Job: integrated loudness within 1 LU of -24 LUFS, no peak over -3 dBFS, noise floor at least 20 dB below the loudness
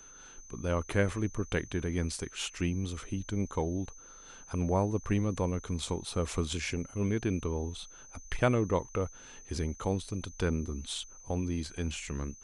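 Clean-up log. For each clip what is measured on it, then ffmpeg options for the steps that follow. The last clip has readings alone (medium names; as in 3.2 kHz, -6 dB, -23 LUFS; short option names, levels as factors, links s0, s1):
steady tone 6.2 kHz; tone level -51 dBFS; loudness -33.5 LUFS; peak level -13.5 dBFS; loudness target -24.0 LUFS
-> -af "bandreject=f=6200:w=30"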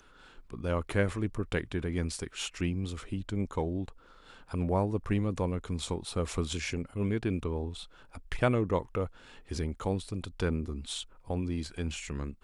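steady tone not found; loudness -33.5 LUFS; peak level -13.5 dBFS; loudness target -24.0 LUFS
-> -af "volume=2.99"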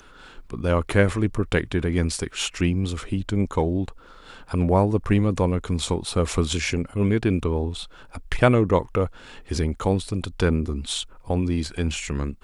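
loudness -24.0 LUFS; peak level -4.0 dBFS; noise floor -48 dBFS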